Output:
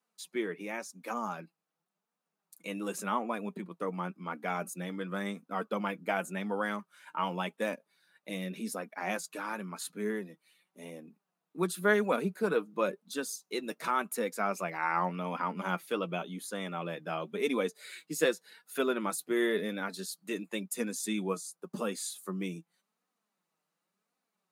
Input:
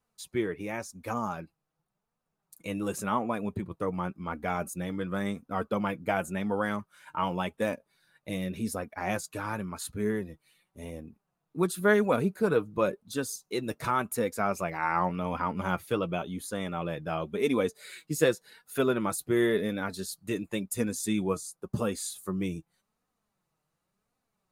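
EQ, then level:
elliptic high-pass filter 170 Hz
tilt shelving filter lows −4.5 dB, about 1,400 Hz
high-shelf EQ 3,900 Hz −6.5 dB
0.0 dB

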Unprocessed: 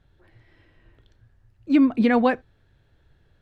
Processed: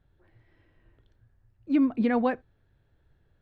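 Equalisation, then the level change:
high-shelf EQ 2,800 Hz −8.5 dB
−5.5 dB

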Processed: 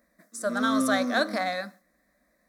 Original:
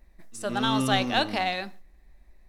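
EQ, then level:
high-pass filter 220 Hz 12 dB per octave
phaser with its sweep stopped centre 570 Hz, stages 8
+4.0 dB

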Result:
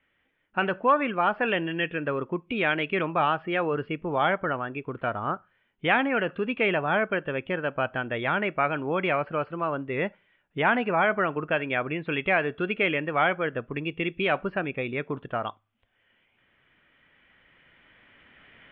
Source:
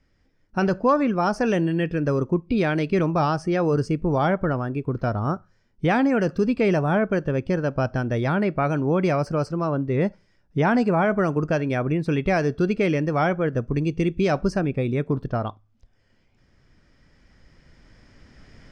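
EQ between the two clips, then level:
Butterworth low-pass 3,300 Hz 72 dB per octave
spectral tilt +4.5 dB per octave
0.0 dB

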